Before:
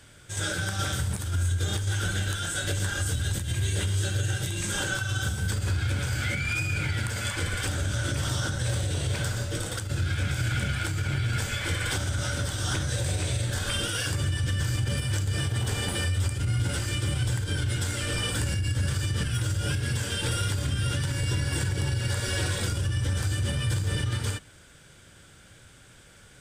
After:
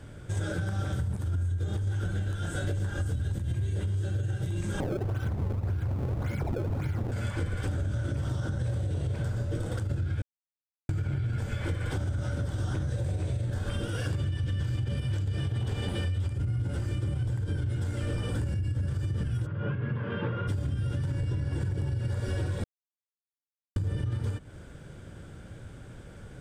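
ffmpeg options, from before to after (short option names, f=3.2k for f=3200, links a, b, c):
-filter_complex "[0:a]asettb=1/sr,asplit=3[a][b][c];[a]atrim=end=4.804[d];[b]atrim=start=4.8:end=7.12,asetpts=PTS-STARTPTS,afade=t=in:d=0.004:c=qsin,afade=t=out:st=2.316:d=0.004:c=qsin,acrusher=samples=26:mix=1:aa=0.000001:lfo=1:lforange=41.6:lforate=1.8[e];[c]atrim=start=7.116[f];[d][e]acrossfade=d=0.004:c1=hsin:c2=qsin[g];[g][f]acrossfade=d=0.004:c1=qsin:c2=hsin,asettb=1/sr,asplit=3[h][i][j];[h]atrim=end=14.114[k];[i]atrim=start=14.11:end=16.33,asetpts=PTS-STARTPTS,afade=t=in:d=0.004:c=qsin,afade=t=out:st=2.216:d=0.004:c=qsin,equalizer=f=3.2k:t=o:w=1.3:g=7.5[l];[j]atrim=start=16.326[m];[k][l]acrossfade=d=0.004:c1=hsin:c2=qsin[n];[n][m]acrossfade=d=0.004:c1=qsin:c2=hsin,asplit=3[o][p][q];[o]afade=t=out:st=19.45:d=0.02[r];[p]highpass=f=130:w=0.5412,highpass=f=130:w=1.3066,equalizer=f=310:t=q:w=4:g=-6,equalizer=f=760:t=q:w=4:g=-5,equalizer=f=1.1k:t=q:w=4:g=9,lowpass=f=2.6k:w=0.5412,lowpass=f=2.6k:w=1.3066,afade=t=in:st=19.45:d=0.02,afade=t=out:st=20.47:d=0.02[s];[q]afade=t=in:st=20.47:d=0.02[t];[r][s][t]amix=inputs=3:normalize=0,asettb=1/sr,asplit=3[u][v][w];[u]atrim=end=21.114[x];[v]atrim=start=21.11:end=21.62,asetpts=PTS-STARTPTS,afade=t=in:d=0.004:c=qsin,afade=t=out:st=0.506:d=0.004:c=qsin,highshelf=f=11k:g=-9.5[y];[w]atrim=start=21.616[z];[x][y]acrossfade=d=0.004:c1=hsin:c2=qsin[aa];[aa][z]acrossfade=d=0.004:c1=qsin:c2=hsin,asplit=5[ab][ac][ad][ae][af];[ab]atrim=end=10.22,asetpts=PTS-STARTPTS,afade=t=out:st=10.216:d=0.004:c=hsin[ag];[ac]atrim=start=10.22:end=10.89,asetpts=PTS-STARTPTS,volume=0[ah];[ad]atrim=start=10.89:end=22.64,asetpts=PTS-STARTPTS,afade=t=in:d=0.004:c=hsin,afade=t=out:st=11.746:d=0.004:c=hsin[ai];[ae]atrim=start=22.64:end=23.76,asetpts=PTS-STARTPTS,volume=0[aj];[af]atrim=start=23.76,asetpts=PTS-STARTPTS,afade=t=in:d=0.004:c=hsin[ak];[ag][ah][ai][aj][ak]concat=n=5:v=0:a=1,tiltshelf=f=1.3k:g=9.5,acompressor=threshold=-29dB:ratio=6,volume=1dB"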